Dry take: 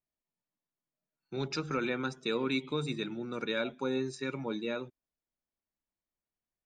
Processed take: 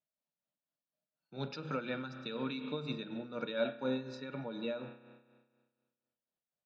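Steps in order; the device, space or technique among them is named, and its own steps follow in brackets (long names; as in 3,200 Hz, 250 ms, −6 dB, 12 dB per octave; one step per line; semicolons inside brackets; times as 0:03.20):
combo amplifier with spring reverb and tremolo (spring reverb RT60 1.6 s, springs 31 ms, chirp 20 ms, DRR 9 dB; amplitude tremolo 4.1 Hz, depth 61%; loudspeaker in its box 110–4,500 Hz, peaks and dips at 370 Hz −10 dB, 590 Hz +7 dB, 1,100 Hz −4 dB, 2,100 Hz −9 dB)
0:01.80–0:02.59: dynamic equaliser 580 Hz, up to −4 dB, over −47 dBFS, Q 0.83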